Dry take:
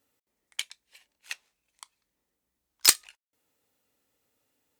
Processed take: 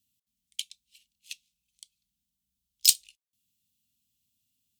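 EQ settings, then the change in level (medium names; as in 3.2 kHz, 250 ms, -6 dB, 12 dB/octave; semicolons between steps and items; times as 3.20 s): elliptic band-stop 210–3000 Hz, stop band 40 dB; 0.0 dB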